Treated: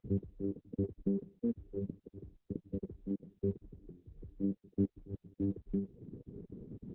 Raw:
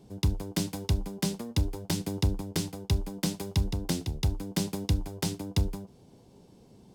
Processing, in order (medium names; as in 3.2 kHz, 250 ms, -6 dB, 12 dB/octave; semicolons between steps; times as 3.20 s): random holes in the spectrogram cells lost 22%; reverb removal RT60 0.54 s; 3.14–5.51 s: treble shelf 3 kHz +2.5 dB; compression 6:1, threshold -27 dBFS, peak gain reduction 7 dB; inverted gate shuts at -26 dBFS, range -30 dB; brick-wall FIR band-stop 500–11000 Hz; distance through air 370 m; trim +10 dB; Opus 6 kbps 48 kHz